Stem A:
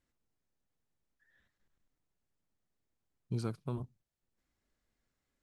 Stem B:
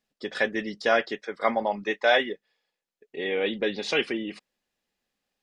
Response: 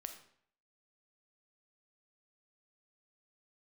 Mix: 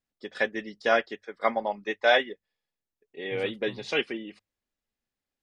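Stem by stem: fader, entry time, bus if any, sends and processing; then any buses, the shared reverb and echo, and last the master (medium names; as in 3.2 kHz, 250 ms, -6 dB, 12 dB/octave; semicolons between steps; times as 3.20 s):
-8.5 dB, 0.00 s, no send, none
+0.5 dB, 0.00 s, no send, upward expansion 1.5:1, over -42 dBFS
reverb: none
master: hum notches 50/100 Hz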